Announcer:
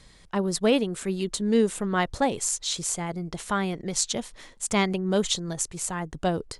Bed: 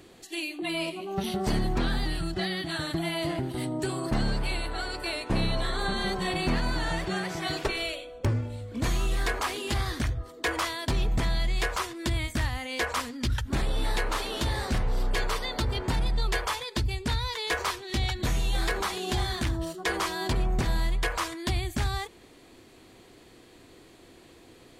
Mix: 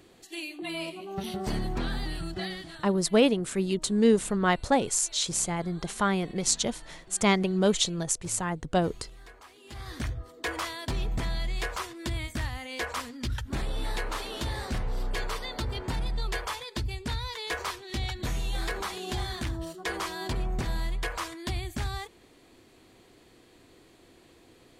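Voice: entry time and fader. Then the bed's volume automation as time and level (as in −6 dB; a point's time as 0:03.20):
2.50 s, +0.5 dB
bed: 0:02.48 −4 dB
0:02.99 −22 dB
0:09.55 −22 dB
0:10.02 −4 dB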